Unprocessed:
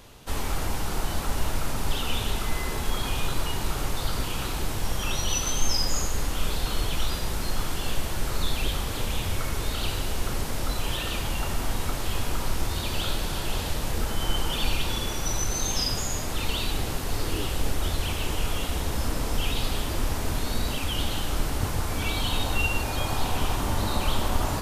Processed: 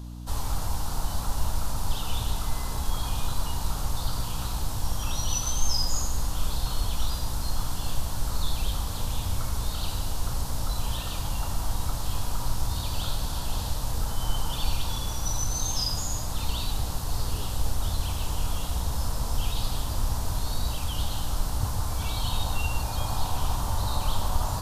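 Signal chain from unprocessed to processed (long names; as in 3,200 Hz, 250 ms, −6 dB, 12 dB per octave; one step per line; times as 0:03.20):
drawn EQ curve 110 Hz 0 dB, 310 Hz −15 dB, 460 Hz −8 dB, 970 Hz 0 dB, 2,200 Hz −13 dB, 4,200 Hz −1 dB
mains hum 60 Hz, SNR 13 dB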